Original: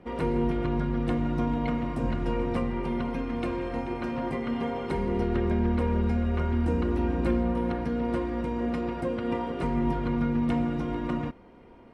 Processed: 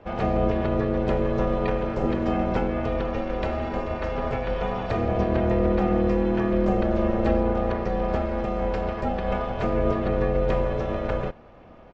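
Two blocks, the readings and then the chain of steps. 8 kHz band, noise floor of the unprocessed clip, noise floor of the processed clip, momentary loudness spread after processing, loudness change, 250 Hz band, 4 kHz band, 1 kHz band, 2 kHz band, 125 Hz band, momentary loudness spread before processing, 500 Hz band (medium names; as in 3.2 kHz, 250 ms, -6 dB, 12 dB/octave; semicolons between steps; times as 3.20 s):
no reading, -51 dBFS, -48 dBFS, 6 LU, +3.5 dB, +1.0 dB, +3.0 dB, +5.0 dB, +4.5 dB, +2.0 dB, 5 LU, +7.0 dB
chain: resampled via 16 kHz; ring modulator 280 Hz; trim +6.5 dB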